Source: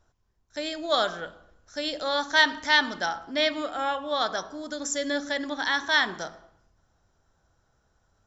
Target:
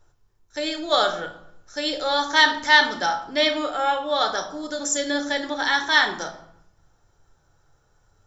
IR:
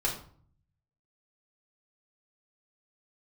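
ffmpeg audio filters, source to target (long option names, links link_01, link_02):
-filter_complex "[0:a]asplit=2[link_01][link_02];[1:a]atrim=start_sample=2205,highshelf=frequency=6800:gain=8.5[link_03];[link_02][link_03]afir=irnorm=-1:irlink=0,volume=-7.5dB[link_04];[link_01][link_04]amix=inputs=2:normalize=0"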